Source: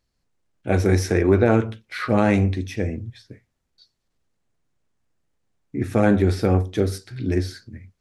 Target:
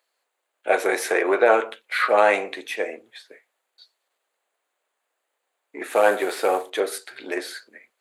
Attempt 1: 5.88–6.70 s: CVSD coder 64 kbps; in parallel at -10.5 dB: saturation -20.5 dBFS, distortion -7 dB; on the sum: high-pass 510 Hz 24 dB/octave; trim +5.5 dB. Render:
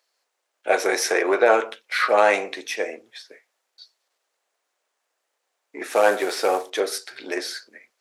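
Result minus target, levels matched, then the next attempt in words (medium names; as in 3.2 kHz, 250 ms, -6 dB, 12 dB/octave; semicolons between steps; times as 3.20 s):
4 kHz band +4.0 dB
5.88–6.70 s: CVSD coder 64 kbps; in parallel at -10.5 dB: saturation -20.5 dBFS, distortion -7 dB; on the sum: high-pass 510 Hz 24 dB/octave; peaking EQ 5.5 kHz -13 dB 0.43 oct; trim +5.5 dB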